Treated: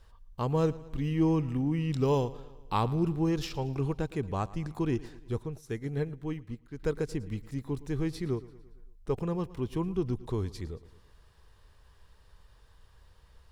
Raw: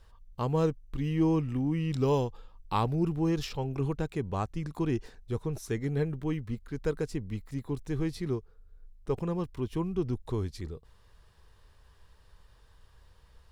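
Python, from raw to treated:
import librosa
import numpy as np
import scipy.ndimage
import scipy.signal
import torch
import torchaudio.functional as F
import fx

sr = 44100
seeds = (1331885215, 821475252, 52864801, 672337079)

p1 = x + fx.echo_feedback(x, sr, ms=113, feedback_pct=55, wet_db=-19.0, dry=0)
y = fx.upward_expand(p1, sr, threshold_db=-45.0, expansion=1.5, at=(5.42, 6.78), fade=0.02)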